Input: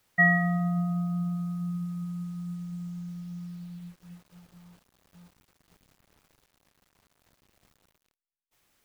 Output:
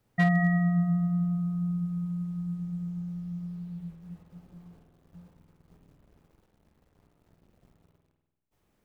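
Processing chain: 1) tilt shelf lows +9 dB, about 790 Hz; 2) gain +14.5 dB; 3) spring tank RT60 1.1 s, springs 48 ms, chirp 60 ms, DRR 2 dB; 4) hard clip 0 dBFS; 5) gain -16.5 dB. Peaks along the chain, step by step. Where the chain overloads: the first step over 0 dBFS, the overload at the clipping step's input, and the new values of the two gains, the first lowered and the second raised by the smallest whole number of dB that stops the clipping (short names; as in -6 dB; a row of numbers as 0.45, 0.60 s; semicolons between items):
-10.0, +4.5, +4.5, 0.0, -16.5 dBFS; step 2, 4.5 dB; step 2 +9.5 dB, step 5 -11.5 dB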